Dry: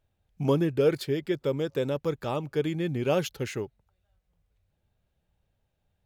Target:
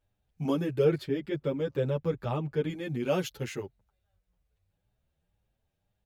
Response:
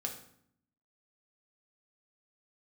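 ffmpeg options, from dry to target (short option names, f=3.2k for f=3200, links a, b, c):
-filter_complex "[0:a]asettb=1/sr,asplit=3[a][b][c];[a]atrim=end=0.844[d];[b]atrim=start=0.84:end=2.7,asetpts=PTS-STARTPTS,afade=t=in:d=0.004:c=qsin,afade=t=out:st=1.856:d=0.004:c=qsin,bass=f=250:g=5,treble=f=4k:g=-9[e];[c]atrim=start=2.696[f];[d][e]acrossfade=d=0.004:c1=hsin:c2=qsin[g];[g][f]acrossfade=d=0.004:c1=qsin:c2=hsin,asplit=2[h][i];[i]adelay=8.2,afreqshift=1.9[j];[h][j]amix=inputs=2:normalize=1"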